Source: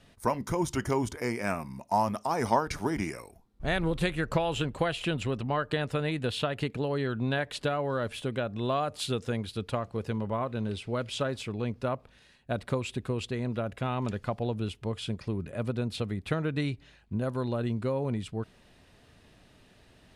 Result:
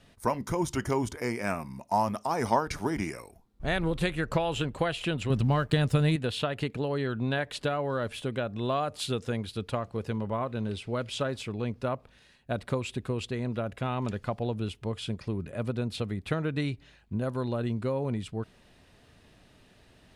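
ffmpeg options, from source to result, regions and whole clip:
-filter_complex "[0:a]asettb=1/sr,asplit=3[a][b][c];[a]atrim=end=5.304[d];[b]atrim=start=5.3:end=6.16,asetpts=PTS-STARTPTS,afade=t=in:d=0.004:c=qsin,afade=t=out:st=0.856:d=0.004:c=qsin,bass=f=250:g=11,treble=f=4k:g=9,aeval=exprs='sgn(val(0))*max(abs(val(0))-0.00237,0)':c=same[e];[c]atrim=start=6.156[f];[d][e]acrossfade=d=0.004:c1=hsin:c2=qsin[g];[g][f]acrossfade=d=0.004:c1=qsin:c2=hsin"

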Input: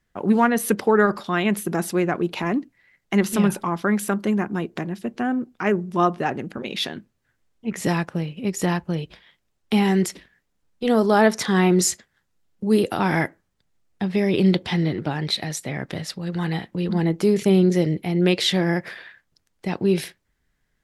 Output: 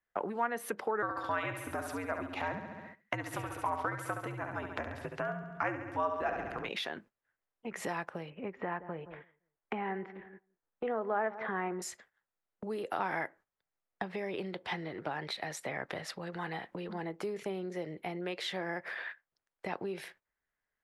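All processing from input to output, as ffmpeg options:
-filter_complex "[0:a]asettb=1/sr,asplit=3[a][b][c];[a]atrim=end=1.024[d];[b]atrim=start=1.02:end=6.69,asetpts=PTS-STARTPTS,afade=t=in:d=0.004:c=qsin,afade=t=out:st=5.666:d=0.004:c=qsin,afreqshift=-80,aecho=1:1:69|138|207|276|345|414|483:0.447|0.255|0.145|0.0827|0.0472|0.0269|0.0153,atrim=end_sample=250047[e];[c]atrim=start=6.686[f];[d][e]acrossfade=d=0.004:c1=hsin:c2=qsin[g];[g][f]acrossfade=d=0.004:c1=qsin:c2=hsin,asettb=1/sr,asplit=3[h][i][j];[h]atrim=end=8.304[k];[i]atrim=start=8.3:end=11.82,asetpts=PTS-STARTPTS,afade=t=in:d=0.004:c=qsin,afade=t=out:st=3.516:d=0.004:c=qsin,lowpass=f=2.3k:w=0.5412,lowpass=f=2.3k:w=1.3066,asplit=2[l][m];[m]adelay=171,lowpass=f=1k:p=1,volume=-15.5dB,asplit=2[n][o];[o]adelay=171,lowpass=f=1k:p=1,volume=0.26,asplit=2[p][q];[q]adelay=171,lowpass=f=1k:p=1,volume=0.26[r];[l][n][p][r]amix=inputs=4:normalize=0,atrim=end_sample=155232[s];[j]atrim=start=11.816[t];[k][s]acrossfade=d=0.004:c1=hsin:c2=qsin[u];[u][t]acrossfade=d=0.004:c1=qsin:c2=hsin,agate=range=-14dB:threshold=-44dB:ratio=16:detection=peak,acompressor=threshold=-32dB:ratio=5,acrossover=split=460 2300:gain=0.158 1 0.251[v][w][x];[v][w][x]amix=inputs=3:normalize=0,volume=4.5dB"

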